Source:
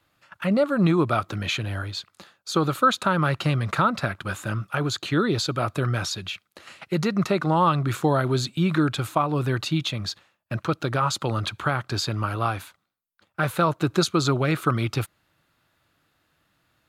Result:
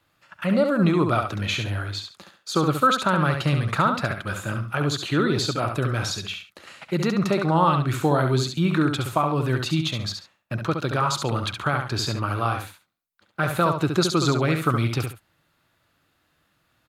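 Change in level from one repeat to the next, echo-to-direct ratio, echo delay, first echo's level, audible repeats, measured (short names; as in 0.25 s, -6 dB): -12.5 dB, -6.0 dB, 69 ms, -6.0 dB, 2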